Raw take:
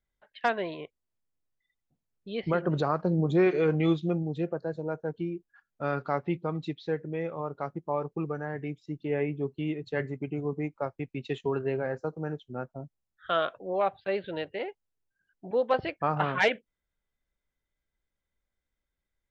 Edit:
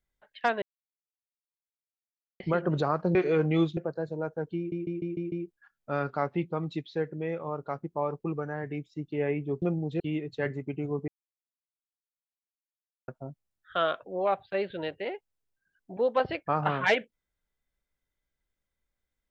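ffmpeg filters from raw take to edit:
-filter_complex "[0:a]asplit=14[s0][s1][s2][s3][s4][s5][s6][s7][s8][s9][s10][s11][s12][s13];[s0]atrim=end=0.62,asetpts=PTS-STARTPTS,afade=t=out:st=0.616:d=0.004:c=hsin[s14];[s1]atrim=start=0.62:end=2.4,asetpts=PTS-STARTPTS,volume=0[s15];[s2]atrim=start=2.4:end=3.152,asetpts=PTS-STARTPTS,afade=t=in:d=0.004:c=hsin[s16];[s3]atrim=start=3.438:end=4.062[s17];[s4]atrim=start=4.438:end=5.392[s18];[s5]atrim=start=5.238:end=5.392[s19];[s6]atrim=start=5.238:end=5.392[s20];[s7]atrim=start=5.238:end=5.392[s21];[s8]atrim=start=5.238:end=5.392[s22];[s9]atrim=start=5.238:end=9.542[s23];[s10]atrim=start=4.058:end=4.442[s24];[s11]atrim=start=9.538:end=10.62,asetpts=PTS-STARTPTS,afade=t=out:st=1.078:d=0.004:c=hsin[s25];[s12]atrim=start=10.62:end=12.62,asetpts=PTS-STARTPTS,volume=0[s26];[s13]atrim=start=12.62,asetpts=PTS-STARTPTS,afade=t=in:d=0.004:c=hsin[s27];[s14][s15][s16]concat=n=3:v=0:a=1[s28];[s28][s17]acrossfade=d=0.004:c1=hsin:c2=hsin[s29];[s29][s18]acrossfade=d=0.004:c1=hsin:c2=hsin[s30];[s30][s19]acrossfade=d=0.004:c1=hsin:c2=hsin[s31];[s31][s20]acrossfade=d=0.004:c1=hsin:c2=hsin[s32];[s32][s21]acrossfade=d=0.004:c1=hsin:c2=hsin[s33];[s33][s22]acrossfade=d=0.004:c1=hsin:c2=hsin[s34];[s34][s23]acrossfade=d=0.004:c1=hsin:c2=hsin[s35];[s35][s24]acrossfade=d=0.004:c1=hsin:c2=hsin[s36];[s25][s26][s27]concat=n=3:v=0:a=1[s37];[s36][s37]acrossfade=d=0.004:c1=hsin:c2=hsin"

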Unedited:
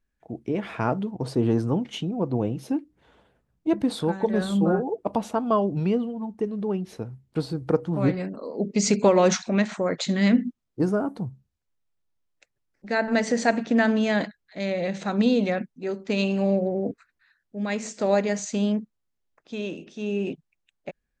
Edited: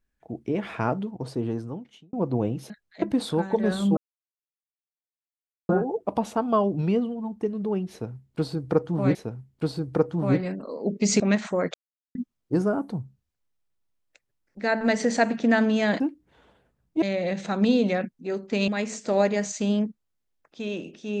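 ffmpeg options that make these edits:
-filter_complex "[0:a]asplit=12[s0][s1][s2][s3][s4][s5][s6][s7][s8][s9][s10][s11];[s0]atrim=end=2.13,asetpts=PTS-STARTPTS,afade=t=out:st=0.74:d=1.39[s12];[s1]atrim=start=2.13:end=2.702,asetpts=PTS-STARTPTS,afade=t=in:d=0.004:c=hsin[s13];[s2]atrim=start=14.268:end=14.592[s14];[s3]atrim=start=3.718:end=4.67,asetpts=PTS-STARTPTS,afade=t=out:st=0.948:d=0.004:c=hsin,apad=pad_dur=1.72[s15];[s4]atrim=start=4.67:end=8.132,asetpts=PTS-STARTPTS,afade=t=in:d=0.004:c=hsin[s16];[s5]atrim=start=6.888:end=8.942[s17];[s6]atrim=start=9.468:end=10.01,asetpts=PTS-STARTPTS,afade=t=out:st=0.538:d=0.004:c=hsin[s18];[s7]atrim=start=10.01:end=10.42,asetpts=PTS-STARTPTS,volume=0[s19];[s8]atrim=start=10.42:end=14.272,asetpts=PTS-STARTPTS,afade=t=in:d=0.004:c=hsin[s20];[s9]atrim=start=2.698:end=3.722[s21];[s10]atrim=start=14.588:end=16.252[s22];[s11]atrim=start=17.608[s23];[s12][s13]concat=n=2:v=0:a=1[s24];[s24][s14]acrossfade=d=0.004:c1=hsin:c2=hsin[s25];[s15][s16]concat=n=2:v=0:a=1[s26];[s25][s26]acrossfade=d=0.004:c1=hsin:c2=hsin[s27];[s27][s17]acrossfade=d=0.004:c1=hsin:c2=hsin[s28];[s18][s19][s20]concat=n=3:v=0:a=1[s29];[s28][s29]acrossfade=d=0.004:c1=hsin:c2=hsin[s30];[s30][s21]acrossfade=d=0.004:c1=hsin:c2=hsin[s31];[s31][s22]acrossfade=d=0.004:c1=hsin:c2=hsin[s32];[s32][s23]acrossfade=d=0.004:c1=hsin:c2=hsin"

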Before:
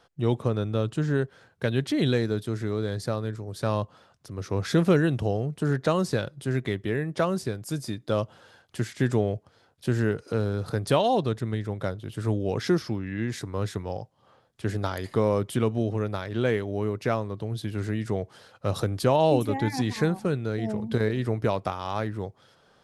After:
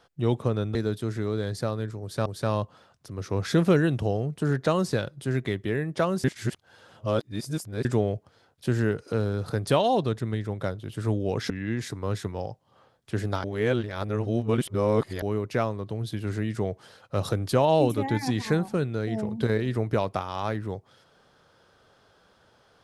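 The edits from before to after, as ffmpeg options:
-filter_complex "[0:a]asplit=8[s0][s1][s2][s3][s4][s5][s6][s7];[s0]atrim=end=0.752[s8];[s1]atrim=start=2.198:end=3.712[s9];[s2]atrim=start=3.458:end=7.442[s10];[s3]atrim=start=7.438:end=9.052,asetpts=PTS-STARTPTS,areverse[s11];[s4]atrim=start=9.048:end=12.702[s12];[s5]atrim=start=13.008:end=14.952[s13];[s6]atrim=start=14.948:end=16.732,asetpts=PTS-STARTPTS,areverse[s14];[s7]atrim=start=16.728[s15];[s8][s9]acrossfade=d=0.004:c1=hsin:c2=hsin[s16];[s16][s10]acrossfade=d=0.004:c1=hsin:c2=hsin[s17];[s17][s11]acrossfade=d=0.004:c1=hsin:c2=hsin[s18];[s18][s12]acrossfade=d=0.004:c1=hsin:c2=hsin[s19];[s19][s13]acrossfade=d=0.004:c1=hsin:c2=hsin[s20];[s20][s14]acrossfade=d=0.004:c1=hsin:c2=hsin[s21];[s21][s15]acrossfade=d=0.004:c1=hsin:c2=hsin"

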